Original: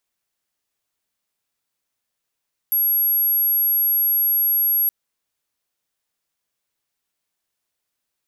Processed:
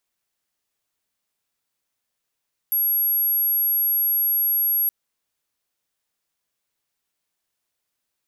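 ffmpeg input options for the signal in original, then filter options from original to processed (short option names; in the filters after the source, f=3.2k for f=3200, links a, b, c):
-f lavfi -i "sine=f=11500:d=2.17:r=44100,volume=2.56dB"
-af "asoftclip=type=tanh:threshold=-16.5dB"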